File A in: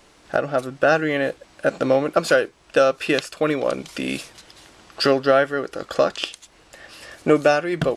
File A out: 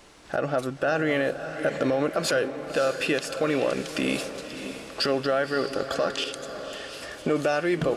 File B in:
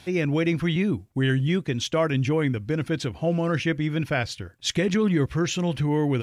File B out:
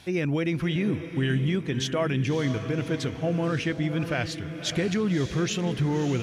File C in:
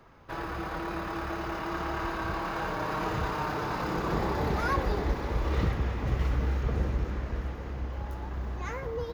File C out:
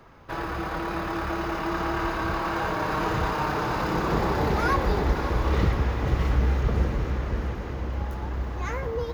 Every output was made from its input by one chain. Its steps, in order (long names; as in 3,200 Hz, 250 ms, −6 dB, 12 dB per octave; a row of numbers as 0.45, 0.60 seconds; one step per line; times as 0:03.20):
brickwall limiter −16 dBFS
feedback delay with all-pass diffusion 586 ms, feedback 45%, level −9.5 dB
loudness normalisation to −27 LKFS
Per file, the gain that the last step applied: +1.0, −1.5, +4.5 decibels